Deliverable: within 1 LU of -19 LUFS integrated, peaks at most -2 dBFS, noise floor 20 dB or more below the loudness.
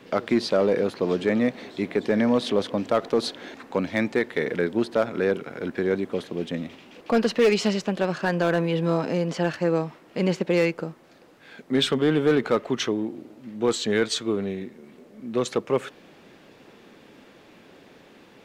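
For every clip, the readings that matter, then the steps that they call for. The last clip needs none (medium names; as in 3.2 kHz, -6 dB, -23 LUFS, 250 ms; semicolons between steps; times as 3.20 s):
clipped samples 0.5%; clipping level -13.0 dBFS; loudness -25.0 LUFS; peak level -13.0 dBFS; loudness target -19.0 LUFS
-> clip repair -13 dBFS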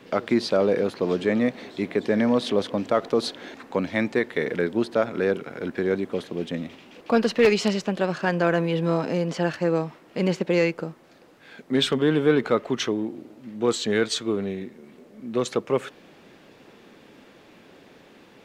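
clipped samples 0.0%; loudness -24.5 LUFS; peak level -5.0 dBFS; loudness target -19.0 LUFS
-> trim +5.5 dB; peak limiter -2 dBFS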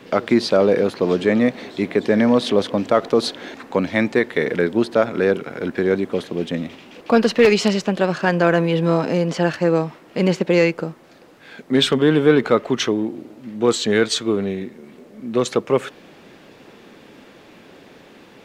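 loudness -19.0 LUFS; peak level -2.0 dBFS; noise floor -47 dBFS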